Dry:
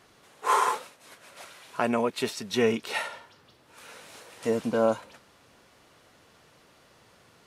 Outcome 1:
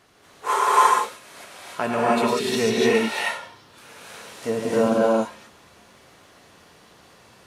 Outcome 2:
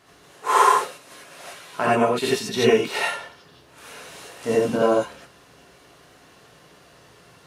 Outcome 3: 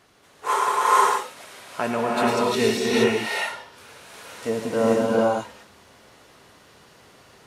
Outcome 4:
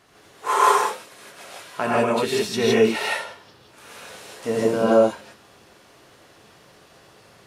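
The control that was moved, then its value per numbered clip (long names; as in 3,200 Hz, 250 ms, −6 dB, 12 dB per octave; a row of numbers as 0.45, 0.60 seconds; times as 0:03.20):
reverb whose tail is shaped and stops, gate: 330, 110, 500, 190 milliseconds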